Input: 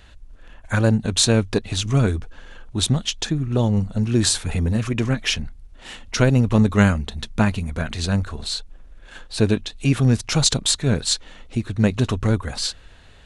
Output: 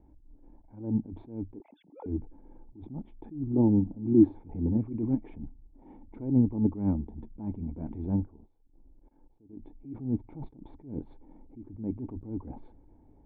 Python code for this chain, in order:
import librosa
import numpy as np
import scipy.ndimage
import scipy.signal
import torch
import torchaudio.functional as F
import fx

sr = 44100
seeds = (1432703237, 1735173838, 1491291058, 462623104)

y = fx.sine_speech(x, sr, at=(1.6, 2.06))
y = fx.peak_eq(y, sr, hz=300.0, db=7.0, octaves=0.64, at=(3.53, 4.32))
y = fx.level_steps(y, sr, step_db=22, at=(8.26, 9.53))
y = fx.formant_cascade(y, sr, vowel='u')
y = fx.attack_slew(y, sr, db_per_s=120.0)
y = F.gain(torch.from_numpy(y), 5.0).numpy()